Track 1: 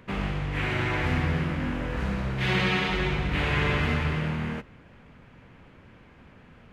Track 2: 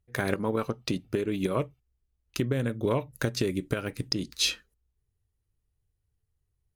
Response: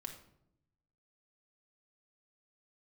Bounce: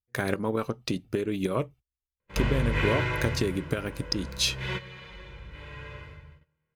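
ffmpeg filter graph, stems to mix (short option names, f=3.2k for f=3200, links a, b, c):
-filter_complex "[0:a]aecho=1:1:2:0.72,adelay=2200,volume=7dB,afade=t=out:st=2.79:d=0.69:silence=0.223872,afade=t=in:st=4.34:d=0.78:silence=0.398107,afade=t=out:st=5.96:d=0.27:silence=0.281838,asplit=2[a][b];[b]volume=-11.5dB[c];[1:a]volume=0dB,asplit=2[d][e];[e]apad=whole_len=393774[f];[a][f]sidechaingate=range=-33dB:threshold=-60dB:ratio=16:detection=peak[g];[2:a]atrim=start_sample=2205[h];[c][h]afir=irnorm=-1:irlink=0[i];[g][d][i]amix=inputs=3:normalize=0,agate=range=-20dB:threshold=-50dB:ratio=16:detection=peak"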